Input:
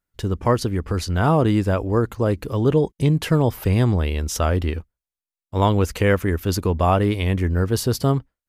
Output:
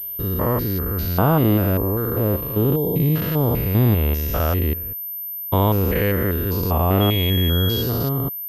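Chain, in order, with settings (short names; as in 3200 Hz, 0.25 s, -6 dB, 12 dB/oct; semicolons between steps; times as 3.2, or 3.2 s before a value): stepped spectrum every 0.2 s; 7–7.81 whine 3300 Hz -27 dBFS; pulse-width modulation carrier 13000 Hz; gain +2.5 dB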